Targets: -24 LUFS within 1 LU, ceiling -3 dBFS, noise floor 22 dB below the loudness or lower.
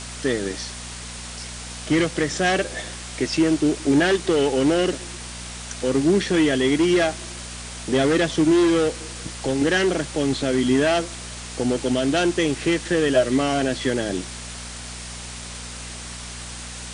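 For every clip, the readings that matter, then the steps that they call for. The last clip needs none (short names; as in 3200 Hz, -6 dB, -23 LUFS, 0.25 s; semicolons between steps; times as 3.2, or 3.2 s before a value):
hum 60 Hz; harmonics up to 240 Hz; hum level -37 dBFS; noise floor -35 dBFS; noise floor target -44 dBFS; loudness -21.5 LUFS; peak -7.5 dBFS; loudness target -24.0 LUFS
-> de-hum 60 Hz, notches 4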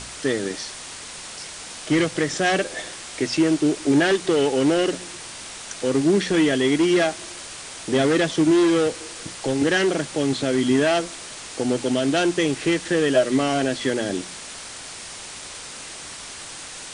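hum none; noise floor -37 dBFS; noise floor target -44 dBFS
-> denoiser 7 dB, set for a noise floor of -37 dBFS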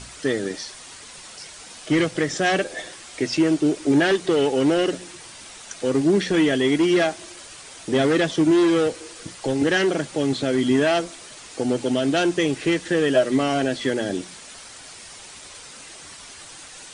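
noise floor -42 dBFS; noise floor target -44 dBFS
-> denoiser 6 dB, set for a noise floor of -42 dBFS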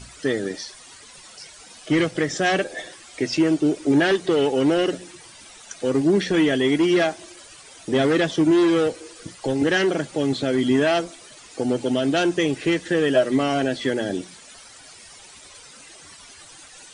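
noise floor -46 dBFS; loudness -21.5 LUFS; peak -7.5 dBFS; loudness target -24.0 LUFS
-> gain -2.5 dB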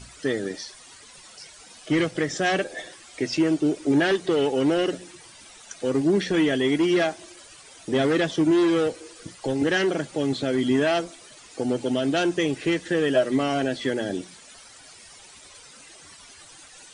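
loudness -24.0 LUFS; peak -10.0 dBFS; noise floor -48 dBFS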